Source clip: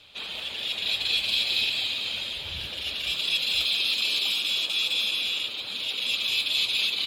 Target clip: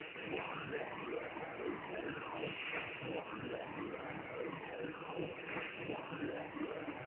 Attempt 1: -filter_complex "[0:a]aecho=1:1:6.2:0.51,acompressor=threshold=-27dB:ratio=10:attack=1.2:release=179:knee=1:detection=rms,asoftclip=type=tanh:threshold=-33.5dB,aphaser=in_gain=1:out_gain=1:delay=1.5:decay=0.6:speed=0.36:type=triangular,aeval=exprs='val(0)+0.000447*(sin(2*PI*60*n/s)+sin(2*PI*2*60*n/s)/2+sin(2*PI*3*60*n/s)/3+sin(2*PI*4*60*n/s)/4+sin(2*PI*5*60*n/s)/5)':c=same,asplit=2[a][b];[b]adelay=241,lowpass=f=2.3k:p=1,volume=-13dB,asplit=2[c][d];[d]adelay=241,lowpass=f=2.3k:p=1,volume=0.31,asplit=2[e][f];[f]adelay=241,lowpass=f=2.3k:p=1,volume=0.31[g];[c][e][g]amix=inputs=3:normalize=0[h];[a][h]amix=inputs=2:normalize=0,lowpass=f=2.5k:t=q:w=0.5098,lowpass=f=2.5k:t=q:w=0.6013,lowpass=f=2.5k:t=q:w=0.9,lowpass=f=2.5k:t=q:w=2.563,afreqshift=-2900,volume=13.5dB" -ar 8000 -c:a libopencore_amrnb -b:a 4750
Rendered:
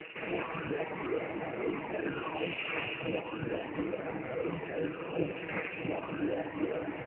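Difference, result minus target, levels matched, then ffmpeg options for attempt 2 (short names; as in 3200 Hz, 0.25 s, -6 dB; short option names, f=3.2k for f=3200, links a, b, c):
soft clip: distortion -7 dB
-filter_complex "[0:a]aecho=1:1:6.2:0.51,acompressor=threshold=-27dB:ratio=10:attack=1.2:release=179:knee=1:detection=rms,asoftclip=type=tanh:threshold=-45dB,aphaser=in_gain=1:out_gain=1:delay=1.5:decay=0.6:speed=0.36:type=triangular,aeval=exprs='val(0)+0.000447*(sin(2*PI*60*n/s)+sin(2*PI*2*60*n/s)/2+sin(2*PI*3*60*n/s)/3+sin(2*PI*4*60*n/s)/4+sin(2*PI*5*60*n/s)/5)':c=same,asplit=2[a][b];[b]adelay=241,lowpass=f=2.3k:p=1,volume=-13dB,asplit=2[c][d];[d]adelay=241,lowpass=f=2.3k:p=1,volume=0.31,asplit=2[e][f];[f]adelay=241,lowpass=f=2.3k:p=1,volume=0.31[g];[c][e][g]amix=inputs=3:normalize=0[h];[a][h]amix=inputs=2:normalize=0,lowpass=f=2.5k:t=q:w=0.5098,lowpass=f=2.5k:t=q:w=0.6013,lowpass=f=2.5k:t=q:w=0.9,lowpass=f=2.5k:t=q:w=2.563,afreqshift=-2900,volume=13.5dB" -ar 8000 -c:a libopencore_amrnb -b:a 4750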